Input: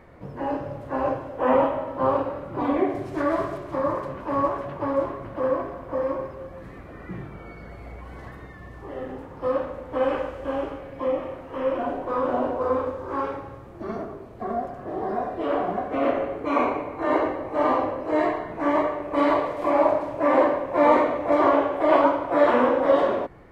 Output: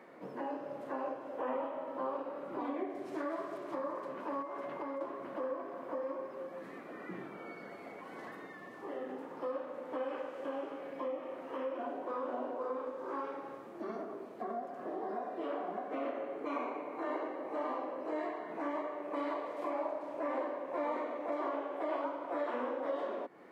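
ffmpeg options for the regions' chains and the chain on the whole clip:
-filter_complex "[0:a]asettb=1/sr,asplit=3[a][b][c];[a]atrim=end=4.424[d];[b]atrim=start=4.42:end=5.01,asetpts=PTS-STARTPTS,afade=t=in:d=0.004:c=qsin,afade=t=out:st=0.586:d=0.004:c=qsin,acompressor=threshold=-28dB:ratio=4:attack=3.2:release=140:knee=1:detection=peak,aeval=exprs='val(0)+0.00251*sin(2*PI*2100*n/s)':c=same[e];[c]atrim=start=5.006[f];[d][e]acrossfade=d=0.004:c1=hsin:c2=qsin[g];[g][f]acrossfade=d=0.004:c1=qsin:c2=hsin,highpass=f=220:w=0.5412,highpass=f=220:w=1.3066,acompressor=threshold=-35dB:ratio=3,volume=-3.5dB"

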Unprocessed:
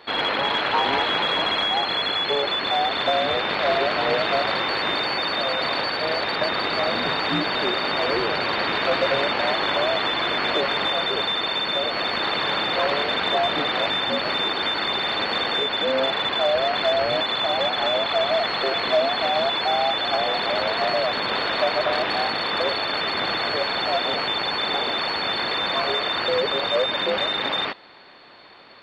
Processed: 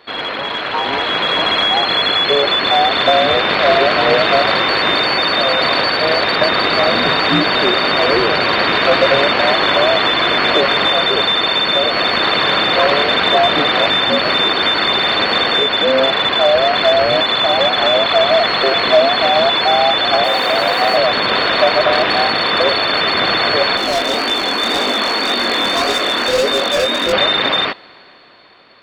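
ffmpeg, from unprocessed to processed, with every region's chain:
-filter_complex "[0:a]asettb=1/sr,asplit=3[a][b][c];[a]atrim=end=20.244[d];[b]atrim=start=20.24:end=20.97,asetpts=PTS-STARTPTS,afade=t=in:d=0.004:c=qsin,afade=t=out:st=0.726:d=0.004:c=qsin,aeval=exprs='val(0)+0.0178*sin(2*PI*470*n/s)':c=same,aeval=exprs='sgn(val(0))*max(abs(val(0))-0.00668,0)':c=same,afreqshift=48[e];[c]atrim=start=20.966[f];[d][e]acrossfade=d=0.004:c1=hsin:c2=qsin[g];[g][f]acrossfade=d=0.004:c1=qsin:c2=hsin,asettb=1/sr,asplit=3[h][i][j];[h]atrim=end=23.774[k];[i]atrim=start=23.77:end=27.13,asetpts=PTS-STARTPTS,afade=t=in:d=0.004:c=qsin,afade=t=out:st=3.356:d=0.004:c=qsin,lowshelf=f=170:t=q:w=3:g=-10.5,aeval=exprs='0.133*(abs(mod(val(0)/0.133+3,4)-2)-1)':c=same,flanger=delay=20:depth=7.1:speed=1.8[l];[j]atrim=start=27.126[m];[k][l]acrossfade=d=0.004:c1=hsin:c2=qsin[n];[n][m]acrossfade=d=0.004:c1=qsin:c2=hsin,bandreject=f=860:w=12,dynaudnorm=f=110:g=21:m=10.5dB,volume=1dB"

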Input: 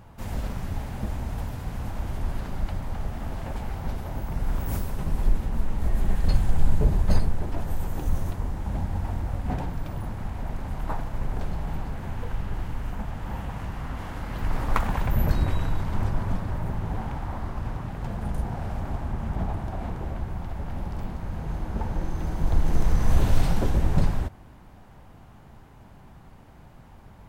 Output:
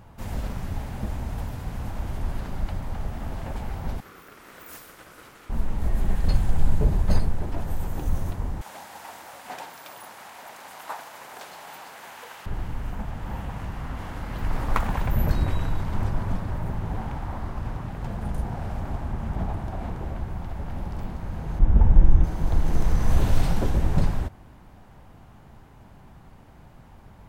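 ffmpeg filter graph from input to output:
-filter_complex "[0:a]asettb=1/sr,asplit=3[a][b][c];[a]atrim=end=4.004[d];[b]atrim=start=4:end=5.5,asetpts=PTS-STARTPTS,afade=t=in:d=0.004:c=qsin,afade=t=out:st=1.496:d=0.004:c=qsin,highpass=780,aeval=exprs='val(0)*sin(2*PI*480*n/s)':c=same[e];[c]atrim=start=5.496[f];[d][e]acrossfade=d=0.004:c1=hsin:c2=qsin[g];[g][f]acrossfade=d=0.004:c1=qsin:c2=hsin,asettb=1/sr,asplit=3[h][i][j];[h]atrim=end=8.614[k];[i]atrim=start=8.61:end=12.46,asetpts=PTS-STARTPTS,afade=t=in:d=0.004:c=qsin,afade=t=out:st=3.846:d=0.004:c=qsin,highpass=670,highshelf=f=2.7k:g=9.5[l];[j]atrim=start=12.456[m];[k][l]acrossfade=d=0.004:c1=hsin:c2=qsin[n];[n][m]acrossfade=d=0.004:c1=qsin:c2=hsin,asettb=1/sr,asplit=3[o][p][q];[o]atrim=end=21.594[r];[p]atrim=start=21.59:end=22.24,asetpts=PTS-STARTPTS,afade=t=in:d=0.004:c=qsin,afade=t=out:st=0.646:d=0.004:c=qsin,asuperstop=centerf=4400:order=12:qfactor=4.1,aemphasis=mode=reproduction:type=bsi[s];[q]atrim=start=22.236[t];[r][s]acrossfade=d=0.004:c1=hsin:c2=qsin[u];[u][t]acrossfade=d=0.004:c1=qsin:c2=hsin"

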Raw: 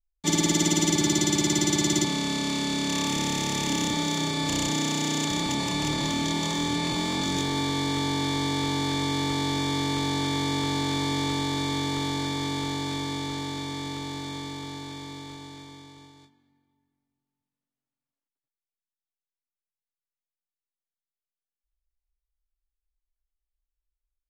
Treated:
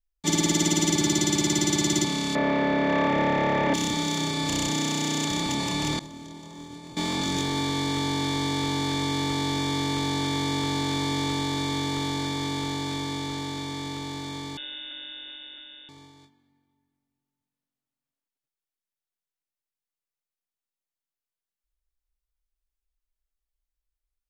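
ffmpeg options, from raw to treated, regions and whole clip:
-filter_complex "[0:a]asettb=1/sr,asplit=3[a][b][c];[a]atrim=end=2.354[d];[b]atrim=start=2.35:end=3.74,asetpts=PTS-STARTPTS,afade=t=in:d=0.004:c=qsin,afade=t=out:st=1.386:d=0.004:c=qsin,aeval=exprs='val(0)+0.5*0.0133*sgn(val(0))':c=same,lowpass=f=1.8k:t=q:w=2.1,equalizer=f=580:w=1.8:g=14.5[e];[c]atrim=start=3.736[f];[d][e]acrossfade=d=0.004:c1=hsin:c2=qsin[g];[g][f]acrossfade=d=0.004:c1=qsin:c2=hsin,asettb=1/sr,asplit=3[h][i][j];[h]atrim=end=5.994[k];[i]atrim=start=5.99:end=6.97,asetpts=PTS-STARTPTS,afade=t=in:d=0.004:c=qsin,afade=t=out:st=0.976:d=0.004:c=qsin,agate=range=-33dB:threshold=-20dB:ratio=3:release=100:detection=peak,acrossover=split=1100|5900[l][m][n];[l]acompressor=threshold=-39dB:ratio=4[o];[m]acompressor=threshold=-53dB:ratio=4[p];[n]acompressor=threshold=-57dB:ratio=4[q];[o][p][q]amix=inputs=3:normalize=0[r];[j]atrim=start=6.966[s];[k][r]acrossfade=d=0.004:c1=hsin:c2=qsin[t];[t][s]acrossfade=d=0.004:c1=qsin:c2=hsin,asettb=1/sr,asplit=3[u][v][w];[u]atrim=end=14.574[x];[v]atrim=start=14.57:end=15.89,asetpts=PTS-STARTPTS,afade=t=in:d=0.004:c=qsin,afade=t=out:st=1.316:d=0.004:c=qsin,bandreject=f=60:t=h:w=6,bandreject=f=120:t=h:w=6,bandreject=f=180:t=h:w=6,bandreject=f=240:t=h:w=6,bandreject=f=300:t=h:w=6,bandreject=f=360:t=h:w=6,bandreject=f=420:t=h:w=6,bandreject=f=480:t=h:w=6,lowpass=f=3.2k:t=q:w=0.5098,lowpass=f=3.2k:t=q:w=0.6013,lowpass=f=3.2k:t=q:w=0.9,lowpass=f=3.2k:t=q:w=2.563,afreqshift=-3800[y];[w]atrim=start=15.886[z];[x][y]acrossfade=d=0.004:c1=hsin:c2=qsin[aa];[aa][z]acrossfade=d=0.004:c1=qsin:c2=hsin"

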